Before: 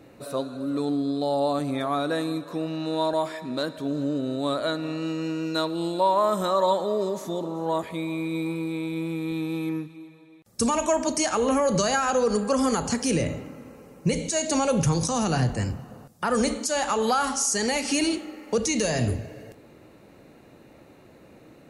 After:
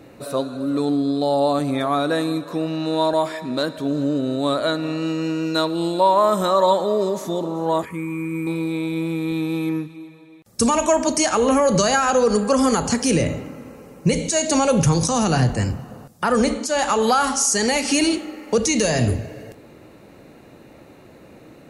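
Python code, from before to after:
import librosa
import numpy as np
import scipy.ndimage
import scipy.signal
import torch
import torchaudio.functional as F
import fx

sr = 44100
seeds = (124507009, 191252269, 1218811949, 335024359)

y = fx.fixed_phaser(x, sr, hz=1600.0, stages=4, at=(7.85, 8.47))
y = fx.high_shelf(y, sr, hz=4800.0, db=-7.5, at=(16.32, 16.79))
y = y * librosa.db_to_amplitude(5.5)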